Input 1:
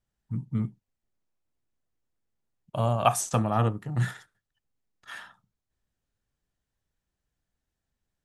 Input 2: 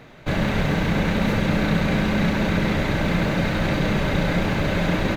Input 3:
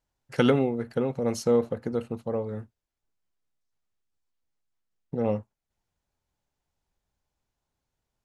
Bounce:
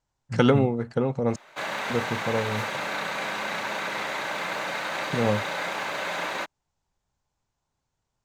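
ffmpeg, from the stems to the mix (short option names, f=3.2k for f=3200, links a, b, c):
-filter_complex "[0:a]volume=-4.5dB[a];[1:a]highpass=670,adelay=1300,volume=-4dB[b];[2:a]lowpass=f=7.7k:w=0.5412,lowpass=f=7.7k:w=1.3066,volume=0.5dB,asplit=3[c][d][e];[c]atrim=end=1.36,asetpts=PTS-STARTPTS,afade=t=out:st=1.356:d=0.004:c=hsin[f];[d]atrim=start=1.36:end=1.9,asetpts=PTS-STARTPTS,volume=0[g];[e]atrim=start=1.9,asetpts=PTS-STARTPTS,afade=t=in:d=0.004:c=hsin[h];[f][g][h]concat=n=3:v=0:a=1,asplit=2[i][j];[j]apad=whole_len=363616[k];[a][k]sidechaingate=range=-33dB:threshold=-52dB:ratio=16:detection=peak[l];[l][b][i]amix=inputs=3:normalize=0,equalizer=f=125:t=o:w=1:g=5,equalizer=f=1k:t=o:w=1:g=5,equalizer=f=8k:t=o:w=1:g=6"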